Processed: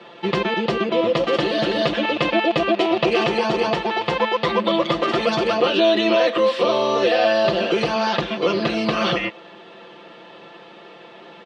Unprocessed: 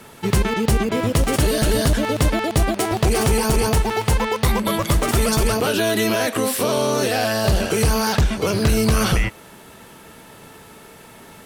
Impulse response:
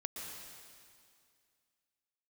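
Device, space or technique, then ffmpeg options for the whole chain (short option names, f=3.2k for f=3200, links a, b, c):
phone earpiece: -filter_complex "[0:a]highpass=370,equalizer=f=870:t=q:w=4:g=-6,equalizer=f=1.5k:t=q:w=4:g=-9,equalizer=f=2.2k:t=q:w=4:g=-6,lowpass=f=3.5k:w=0.5412,lowpass=f=3.5k:w=1.3066,asettb=1/sr,asplit=3[a][b][c];[a]atrim=end=1.844[d];[b]atrim=start=1.84:end=3.27,asetpts=PTS-STARTPTS,afade=t=in:d=0.004:c=qsin,afade=t=out:st=1.426:d=0.004:c=qsin,equalizer=f=2.6k:t=o:w=0.4:g=5.5[e];[c]atrim=start=3.266[f];[d][e]acrossfade=d=0.004:c1=hsin:c2=qsin[g];[g][f]acrossfade=d=0.004:c1=qsin:c2=hsin,aecho=1:1:5.8:0.97,volume=3.5dB"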